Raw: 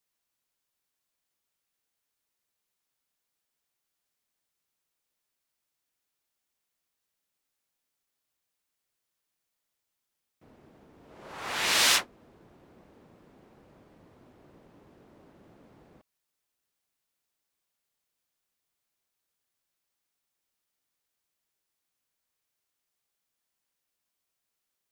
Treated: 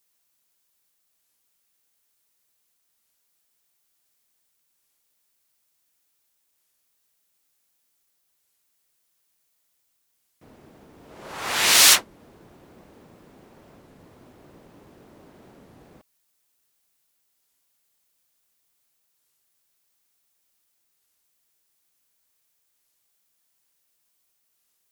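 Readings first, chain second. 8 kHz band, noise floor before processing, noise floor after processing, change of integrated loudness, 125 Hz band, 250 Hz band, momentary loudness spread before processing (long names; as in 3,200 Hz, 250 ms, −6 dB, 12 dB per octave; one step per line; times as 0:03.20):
+11.0 dB, −84 dBFS, −72 dBFS, +8.0 dB, +5.5 dB, +5.5 dB, 15 LU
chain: high-shelf EQ 5,600 Hz +8 dB
wow of a warped record 33 1/3 rpm, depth 250 cents
level +6 dB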